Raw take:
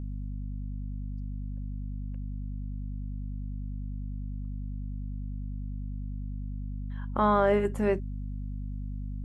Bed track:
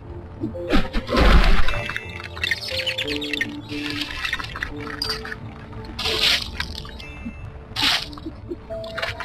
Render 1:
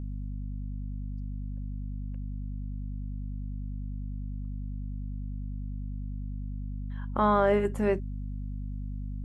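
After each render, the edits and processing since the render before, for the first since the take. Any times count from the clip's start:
no processing that can be heard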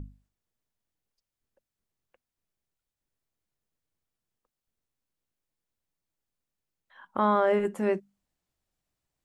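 mains-hum notches 50/100/150/200/250 Hz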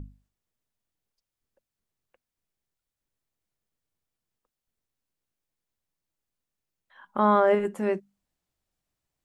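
0:07.07–0:07.55: comb filter 4.9 ms, depth 50%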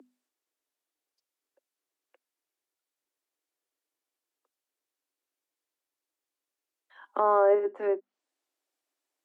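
Butterworth high-pass 270 Hz 72 dB per octave
treble cut that deepens with the level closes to 1,100 Hz, closed at −25 dBFS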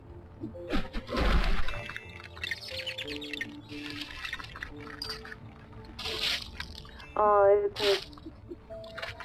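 mix in bed track −12 dB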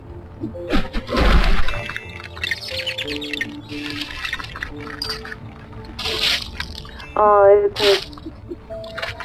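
level +11.5 dB
brickwall limiter −3 dBFS, peak gain reduction 2.5 dB

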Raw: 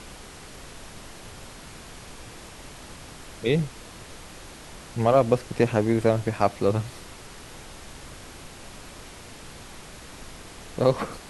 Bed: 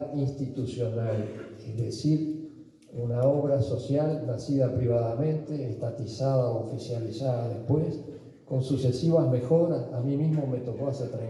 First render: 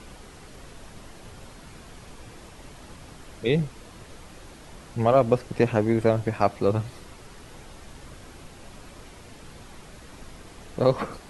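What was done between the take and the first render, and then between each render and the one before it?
broadband denoise 6 dB, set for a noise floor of −44 dBFS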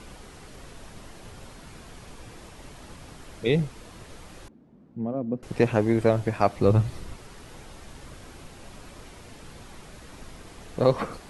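0:04.48–0:05.43: resonant band-pass 230 Hz, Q 2.5
0:06.57–0:07.16: low-shelf EQ 180 Hz +9.5 dB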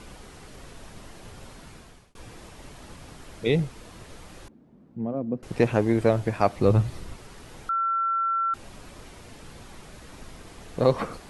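0:01.51–0:02.15: fade out equal-power
0:07.69–0:08.54: beep over 1,350 Hz −22 dBFS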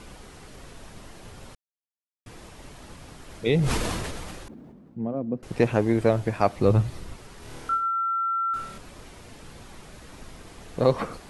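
0:01.55–0:02.26: silence
0:03.24–0:05.08: level that may fall only so fast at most 24 dB per second
0:07.39–0:08.78: flutter between parallel walls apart 4.6 metres, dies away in 0.6 s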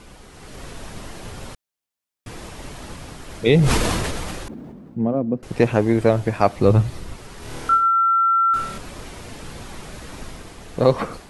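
automatic gain control gain up to 9 dB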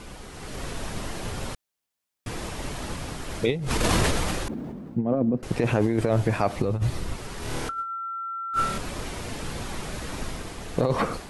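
brickwall limiter −12.5 dBFS, peak gain reduction 11 dB
compressor whose output falls as the input rises −23 dBFS, ratio −0.5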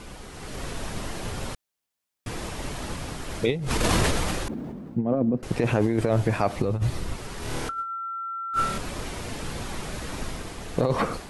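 no processing that can be heard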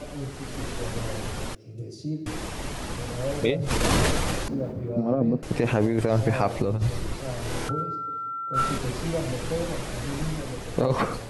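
mix in bed −6.5 dB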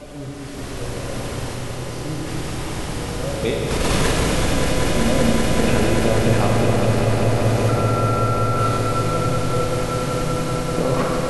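on a send: echo that builds up and dies away 192 ms, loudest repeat 5, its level −8.5 dB
on the sum: four-comb reverb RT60 3.9 s, combs from 31 ms, DRR −1 dB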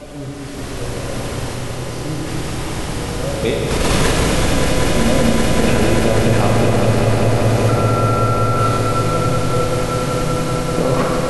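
level +3.5 dB
brickwall limiter −3 dBFS, peak gain reduction 2 dB

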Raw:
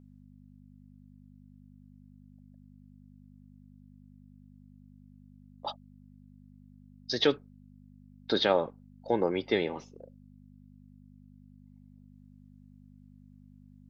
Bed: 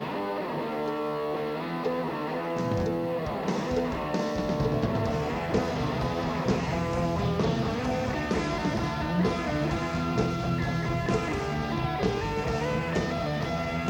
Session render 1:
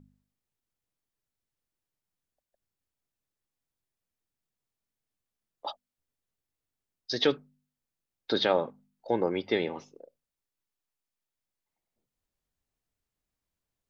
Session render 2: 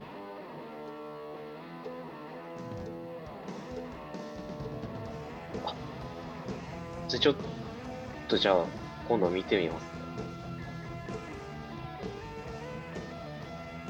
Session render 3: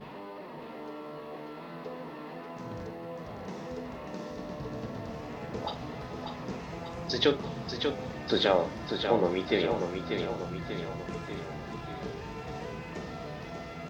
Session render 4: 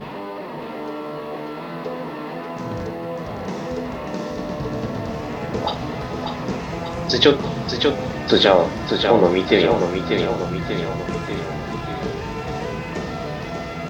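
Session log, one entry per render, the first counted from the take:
hum removal 50 Hz, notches 5
mix in bed −12.5 dB
double-tracking delay 43 ms −11.5 dB; repeating echo 591 ms, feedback 54%, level −6 dB
level +12 dB; brickwall limiter −1 dBFS, peak gain reduction 3 dB

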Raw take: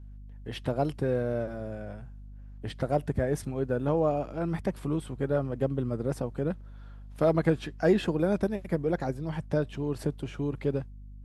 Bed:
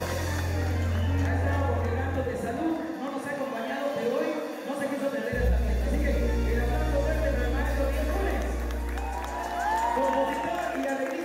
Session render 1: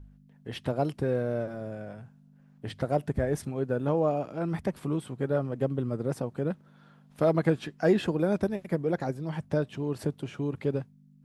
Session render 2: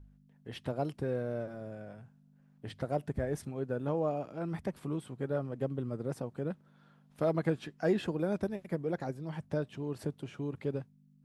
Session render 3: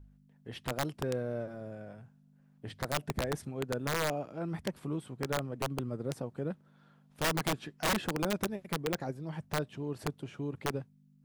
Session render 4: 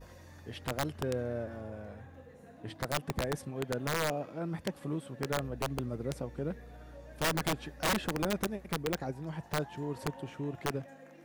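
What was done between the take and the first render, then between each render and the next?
hum removal 50 Hz, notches 2
level −6 dB
wrap-around overflow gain 24 dB
mix in bed −24 dB

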